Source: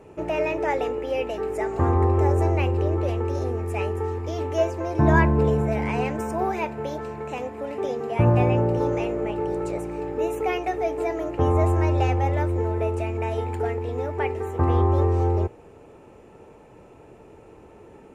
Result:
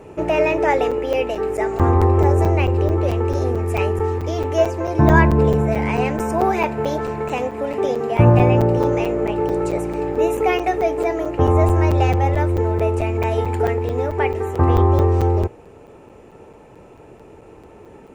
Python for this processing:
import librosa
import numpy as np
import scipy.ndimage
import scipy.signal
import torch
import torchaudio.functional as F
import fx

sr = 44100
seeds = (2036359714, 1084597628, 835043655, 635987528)

p1 = fx.rider(x, sr, range_db=10, speed_s=2.0)
p2 = x + (p1 * librosa.db_to_amplitude(2.5))
p3 = fx.buffer_crackle(p2, sr, first_s=0.91, period_s=0.22, block=256, kind='zero')
y = p3 * librosa.db_to_amplitude(-2.0)